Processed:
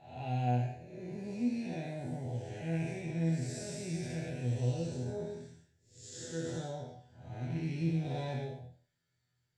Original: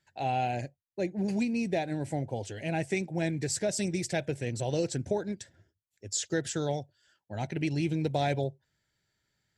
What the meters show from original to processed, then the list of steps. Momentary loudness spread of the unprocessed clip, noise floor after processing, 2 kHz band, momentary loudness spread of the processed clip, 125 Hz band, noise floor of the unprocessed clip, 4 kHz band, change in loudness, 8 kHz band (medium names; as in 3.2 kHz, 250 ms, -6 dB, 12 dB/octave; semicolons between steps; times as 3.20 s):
8 LU, -80 dBFS, -10.0 dB, 14 LU, -0.5 dB, -81 dBFS, -10.0 dB, -5.0 dB, -12.0 dB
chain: spectral blur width 282 ms; peaking EQ 120 Hz +7.5 dB 1 oct; chord resonator E2 fifth, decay 0.38 s; trim +7.5 dB